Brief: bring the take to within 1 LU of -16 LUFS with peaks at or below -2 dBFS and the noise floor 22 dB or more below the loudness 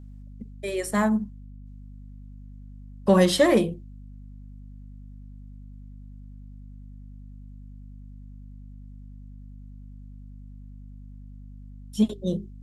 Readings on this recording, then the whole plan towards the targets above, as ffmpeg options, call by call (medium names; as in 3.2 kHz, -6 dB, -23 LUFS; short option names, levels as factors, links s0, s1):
hum 50 Hz; highest harmonic 250 Hz; hum level -41 dBFS; loudness -24.0 LUFS; peak level -6.5 dBFS; loudness target -16.0 LUFS
-> -af "bandreject=f=50:t=h:w=6,bandreject=f=100:t=h:w=6,bandreject=f=150:t=h:w=6,bandreject=f=200:t=h:w=6,bandreject=f=250:t=h:w=6"
-af "volume=2.51,alimiter=limit=0.794:level=0:latency=1"